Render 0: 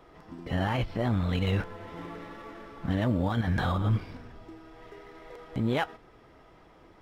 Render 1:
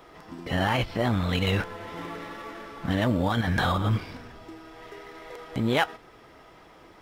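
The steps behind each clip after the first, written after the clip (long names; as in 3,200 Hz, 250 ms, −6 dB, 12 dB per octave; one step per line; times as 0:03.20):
spectral tilt +1.5 dB per octave
level +5.5 dB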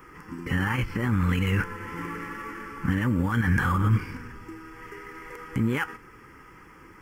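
brickwall limiter −18.5 dBFS, peak gain reduction 9 dB
phaser with its sweep stopped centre 1,600 Hz, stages 4
level +5.5 dB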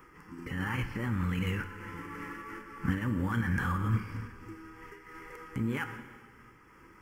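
dense smooth reverb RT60 1.9 s, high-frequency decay 0.95×, DRR 8.5 dB
amplitude modulation by smooth noise, depth 60%
level −4 dB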